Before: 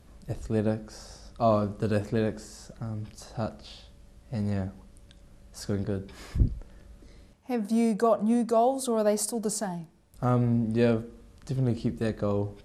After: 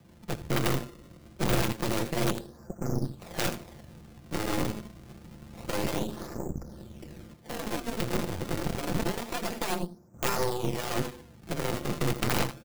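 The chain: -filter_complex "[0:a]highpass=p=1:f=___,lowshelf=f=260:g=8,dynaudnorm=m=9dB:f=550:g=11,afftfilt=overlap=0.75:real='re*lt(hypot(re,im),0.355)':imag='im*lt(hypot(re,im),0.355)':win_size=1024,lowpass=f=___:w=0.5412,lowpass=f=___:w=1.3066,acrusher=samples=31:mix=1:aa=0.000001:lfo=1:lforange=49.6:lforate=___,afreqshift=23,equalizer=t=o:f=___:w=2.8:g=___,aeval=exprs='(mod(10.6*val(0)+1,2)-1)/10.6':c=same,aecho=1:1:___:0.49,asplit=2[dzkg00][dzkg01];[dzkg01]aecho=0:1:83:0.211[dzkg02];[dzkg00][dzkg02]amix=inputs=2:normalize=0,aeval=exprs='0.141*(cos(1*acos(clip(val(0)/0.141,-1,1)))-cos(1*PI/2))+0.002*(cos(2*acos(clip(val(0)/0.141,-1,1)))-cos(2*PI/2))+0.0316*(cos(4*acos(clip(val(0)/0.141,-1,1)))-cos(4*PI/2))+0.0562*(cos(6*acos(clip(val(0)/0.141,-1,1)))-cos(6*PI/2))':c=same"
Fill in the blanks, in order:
200, 1.4k, 1.4k, 0.27, 1.1k, -3.5, 5.8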